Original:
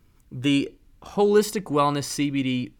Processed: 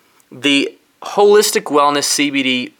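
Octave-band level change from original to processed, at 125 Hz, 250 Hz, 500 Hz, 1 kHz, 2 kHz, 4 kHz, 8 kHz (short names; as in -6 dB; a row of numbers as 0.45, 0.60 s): -4.5, +5.5, +9.5, +10.5, +15.0, +15.0, +15.5 dB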